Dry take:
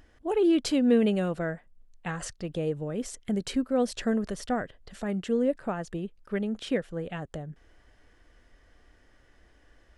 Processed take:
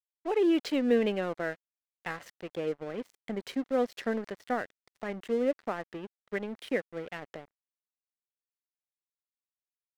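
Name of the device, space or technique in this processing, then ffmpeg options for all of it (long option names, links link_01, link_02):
pocket radio on a weak battery: -af "highpass=290,lowpass=4100,aeval=exprs='sgn(val(0))*max(abs(val(0))-0.00596,0)':channel_layout=same,equalizer=frequency=2000:width_type=o:width=0.33:gain=5"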